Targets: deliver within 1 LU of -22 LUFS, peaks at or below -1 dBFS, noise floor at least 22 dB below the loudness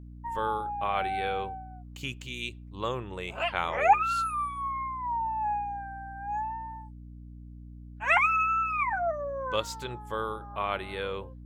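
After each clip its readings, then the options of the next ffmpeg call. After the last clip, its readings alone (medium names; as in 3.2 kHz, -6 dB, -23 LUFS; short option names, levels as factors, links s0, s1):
hum 60 Hz; highest harmonic 300 Hz; hum level -43 dBFS; loudness -30.0 LUFS; peak level -10.5 dBFS; loudness target -22.0 LUFS
-> -af "bandreject=f=60:t=h:w=6,bandreject=f=120:t=h:w=6,bandreject=f=180:t=h:w=6,bandreject=f=240:t=h:w=6,bandreject=f=300:t=h:w=6"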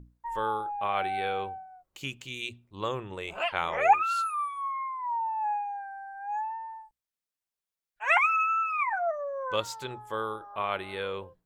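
hum not found; loudness -30.0 LUFS; peak level -10.5 dBFS; loudness target -22.0 LUFS
-> -af "volume=2.51"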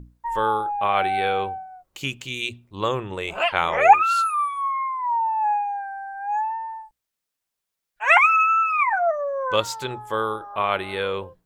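loudness -22.0 LUFS; peak level -2.5 dBFS; noise floor -83 dBFS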